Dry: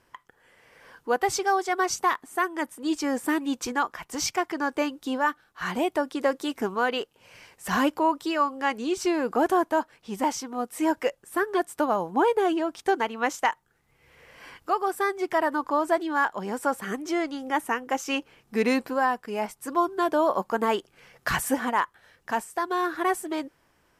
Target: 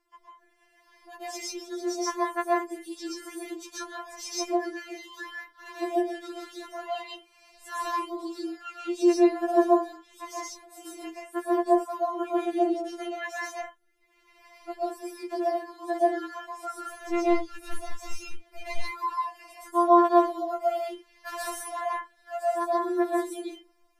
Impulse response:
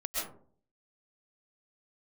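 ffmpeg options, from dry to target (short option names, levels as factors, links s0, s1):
-filter_complex "[0:a]asplit=3[s0][s1][s2];[s0]afade=t=out:st=16.82:d=0.02[s3];[s1]aeval=exprs='clip(val(0),-1,0.0398)':c=same,afade=t=in:st=16.82:d=0.02,afade=t=out:st=18.66:d=0.02[s4];[s2]afade=t=in:st=18.66:d=0.02[s5];[s3][s4][s5]amix=inputs=3:normalize=0[s6];[1:a]atrim=start_sample=2205,afade=t=out:st=0.27:d=0.01,atrim=end_sample=12348[s7];[s6][s7]afir=irnorm=-1:irlink=0,afftfilt=real='re*4*eq(mod(b,16),0)':imag='im*4*eq(mod(b,16),0)':win_size=2048:overlap=0.75,volume=0.473"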